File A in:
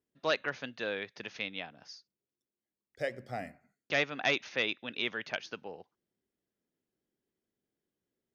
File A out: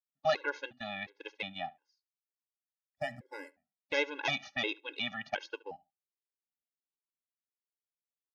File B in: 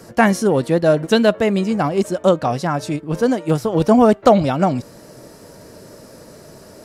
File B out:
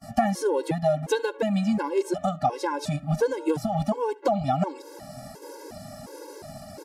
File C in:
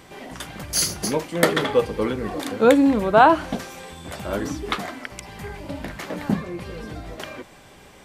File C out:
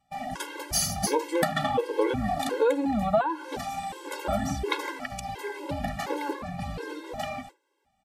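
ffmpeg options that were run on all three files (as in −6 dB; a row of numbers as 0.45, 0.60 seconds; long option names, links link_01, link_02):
-filter_complex "[0:a]agate=range=-27dB:threshold=-42dB:ratio=16:detection=peak,equalizer=frequency=800:width=4.4:gain=11,acompressor=threshold=-20dB:ratio=10,asplit=2[link_01][link_02];[link_02]adelay=71,lowpass=frequency=3900:poles=1,volume=-22dB,asplit=2[link_03][link_04];[link_04]adelay=71,lowpass=frequency=3900:poles=1,volume=0.17[link_05];[link_03][link_05]amix=inputs=2:normalize=0[link_06];[link_01][link_06]amix=inputs=2:normalize=0,afftfilt=real='re*gt(sin(2*PI*1.4*pts/sr)*(1-2*mod(floor(b*sr/1024/280),2)),0)':imag='im*gt(sin(2*PI*1.4*pts/sr)*(1-2*mod(floor(b*sr/1024/280),2)),0)':win_size=1024:overlap=0.75,volume=2dB"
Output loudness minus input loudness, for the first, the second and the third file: −1.5, −9.5, −8.0 LU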